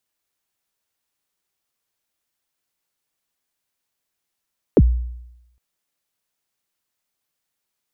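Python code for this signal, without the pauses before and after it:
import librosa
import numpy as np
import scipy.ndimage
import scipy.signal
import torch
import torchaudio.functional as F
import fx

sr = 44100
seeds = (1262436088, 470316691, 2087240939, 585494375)

y = fx.drum_kick(sr, seeds[0], length_s=0.81, level_db=-6.0, start_hz=540.0, end_hz=60.0, sweep_ms=46.0, decay_s=0.88, click=False)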